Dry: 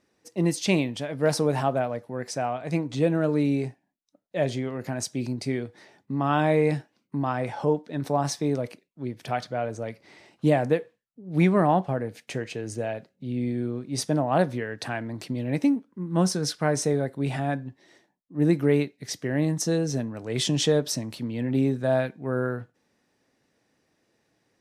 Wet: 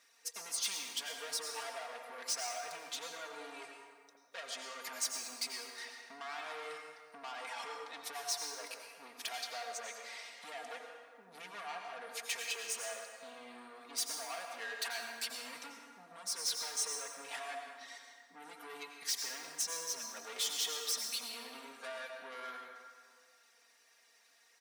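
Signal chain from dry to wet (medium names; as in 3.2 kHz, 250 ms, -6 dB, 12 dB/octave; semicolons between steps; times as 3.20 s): reverb removal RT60 0.59 s; compression 6:1, threshold -34 dBFS, peak gain reduction 17 dB; saturation -39.5 dBFS, distortion -8 dB; high-pass 1.1 kHz 12 dB/octave; treble shelf 3.9 kHz +5.5 dB; comb 4.3 ms, depth 82%; reverberation RT60 1.9 s, pre-delay 78 ms, DRR 2 dB; trim +3.5 dB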